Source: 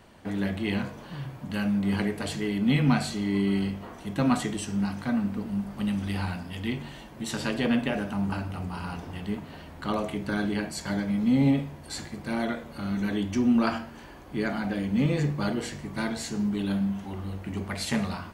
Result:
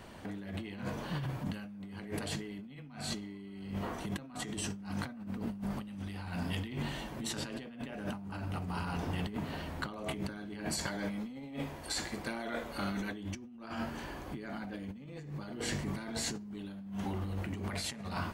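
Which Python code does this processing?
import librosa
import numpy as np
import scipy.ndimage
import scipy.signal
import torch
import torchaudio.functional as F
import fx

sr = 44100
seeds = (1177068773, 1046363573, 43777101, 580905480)

y = fx.peak_eq(x, sr, hz=130.0, db=-10.5, octaves=2.0, at=(10.86, 13.12))
y = fx.over_compress(y, sr, threshold_db=-37.0, ratio=-1.0)
y = y * librosa.db_to_amplitude(-3.5)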